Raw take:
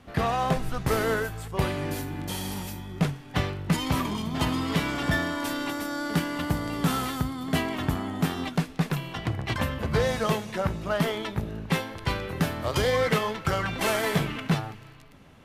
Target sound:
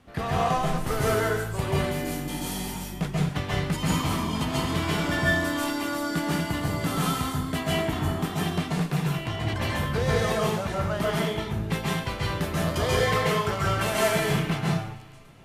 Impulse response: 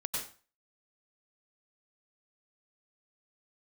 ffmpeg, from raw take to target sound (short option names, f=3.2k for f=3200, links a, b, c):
-filter_complex "[0:a]equalizer=f=8.8k:w=1.5:g=2.5[a];[1:a]atrim=start_sample=2205,asetrate=30870,aresample=44100[b];[a][b]afir=irnorm=-1:irlink=0,volume=-4.5dB"